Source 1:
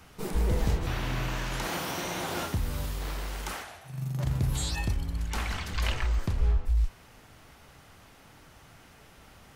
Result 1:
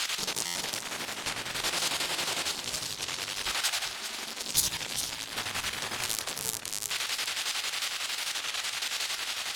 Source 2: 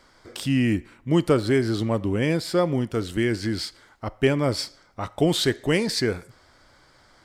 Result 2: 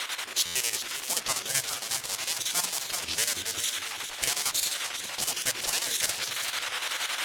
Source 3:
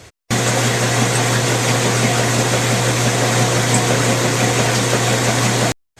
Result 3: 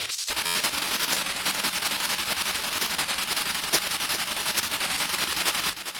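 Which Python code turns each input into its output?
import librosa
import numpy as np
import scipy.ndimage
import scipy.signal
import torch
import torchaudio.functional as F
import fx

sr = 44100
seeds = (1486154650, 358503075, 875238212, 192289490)

y = x + 0.5 * 10.0 ** (-11.5 / 20.0) * np.diff(np.sign(x), prepend=np.sign(x[:1]))
y = fx.bass_treble(y, sr, bass_db=-7, treble_db=11)
y = fx.spec_gate(y, sr, threshold_db=-15, keep='weak')
y = fx.chopper(y, sr, hz=11.0, depth_pct=65, duty_pct=65)
y = scipy.signal.sosfilt(scipy.signal.butter(2, 9400.0, 'lowpass', fs=sr, output='sos'), y)
y = fx.hum_notches(y, sr, base_hz=60, count=3)
y = y + 10.0 ** (-9.5 / 20.0) * np.pad(y, (int(401 * sr / 1000.0), 0))[:len(y)]
y = fx.rider(y, sr, range_db=10, speed_s=2.0)
y = fx.peak_eq(y, sr, hz=110.0, db=3.5, octaves=0.4)
y = fx.buffer_glitch(y, sr, at_s=(0.45,), block=512, repeats=8)
y = fx.record_warp(y, sr, rpm=33.33, depth_cents=160.0)
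y = F.gain(torch.from_numpy(y), -2.0).numpy()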